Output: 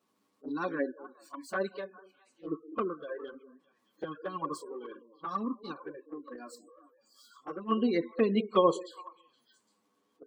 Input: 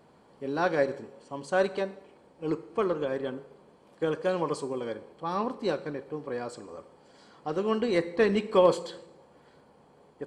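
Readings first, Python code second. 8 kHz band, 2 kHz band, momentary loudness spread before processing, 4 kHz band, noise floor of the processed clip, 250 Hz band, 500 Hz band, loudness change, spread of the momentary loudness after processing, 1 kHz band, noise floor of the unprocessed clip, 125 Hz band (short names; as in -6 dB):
-5.0 dB, -6.5 dB, 17 LU, -4.5 dB, -75 dBFS, -1.5 dB, -6.5 dB, -4.0 dB, 20 LU, -3.0 dB, -59 dBFS, -6.0 dB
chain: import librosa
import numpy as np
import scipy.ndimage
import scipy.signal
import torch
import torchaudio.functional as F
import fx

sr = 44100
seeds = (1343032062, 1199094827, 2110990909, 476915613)

y = x + 0.5 * 10.0 ** (-37.0 / 20.0) * np.sign(x)
y = fx.noise_reduce_blind(y, sr, reduce_db=21)
y = fx.highpass(y, sr, hz=150.0, slope=6)
y = fx.high_shelf(y, sr, hz=2500.0, db=9.5)
y = fx.echo_stepped(y, sr, ms=203, hz=390.0, octaves=1.4, feedback_pct=70, wet_db=-9.0)
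y = fx.dynamic_eq(y, sr, hz=1500.0, q=5.6, threshold_db=-48.0, ratio=4.0, max_db=4)
y = fx.spec_gate(y, sr, threshold_db=-25, keep='strong')
y = fx.small_body(y, sr, hz=(260.0, 1100.0), ring_ms=35, db=14)
y = fx.env_flanger(y, sr, rest_ms=10.4, full_db=-15.0)
y = fx.upward_expand(y, sr, threshold_db=-36.0, expansion=1.5)
y = y * 10.0 ** (-5.0 / 20.0)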